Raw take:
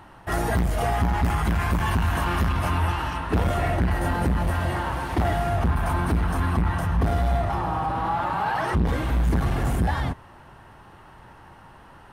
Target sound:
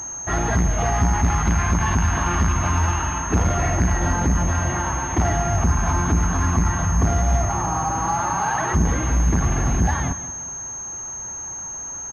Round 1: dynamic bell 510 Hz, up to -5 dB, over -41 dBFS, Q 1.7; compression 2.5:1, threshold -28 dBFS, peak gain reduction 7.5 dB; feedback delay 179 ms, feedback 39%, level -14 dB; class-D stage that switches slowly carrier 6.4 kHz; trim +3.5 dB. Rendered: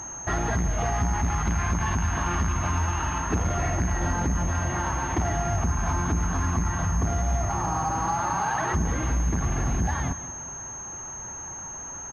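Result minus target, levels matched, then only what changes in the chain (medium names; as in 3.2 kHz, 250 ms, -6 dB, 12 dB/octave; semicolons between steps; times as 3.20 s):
compression: peak gain reduction +7.5 dB
remove: compression 2.5:1, threshold -28 dBFS, peak gain reduction 7.5 dB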